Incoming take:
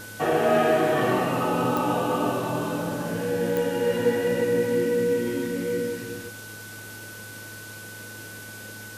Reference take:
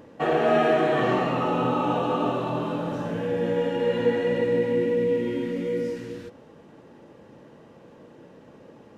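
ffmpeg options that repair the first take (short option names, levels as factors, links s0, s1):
-af "adeclick=t=4,bandreject=f=106:t=h:w=4,bandreject=f=212:t=h:w=4,bandreject=f=318:t=h:w=4,bandreject=f=424:t=h:w=4,bandreject=f=1500:w=30,afwtdn=0.0071"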